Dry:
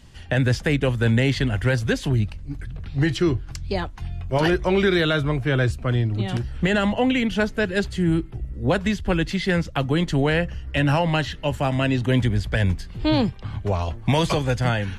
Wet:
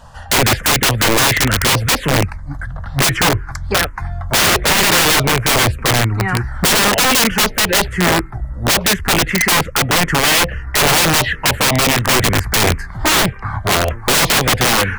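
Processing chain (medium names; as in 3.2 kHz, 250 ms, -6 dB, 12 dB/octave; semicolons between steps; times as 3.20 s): high-order bell 1 kHz +13.5 dB 2.7 oct; touch-sensitive phaser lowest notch 360 Hz, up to 1.7 kHz, full sweep at -7 dBFS; integer overflow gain 14.5 dB; trim +7 dB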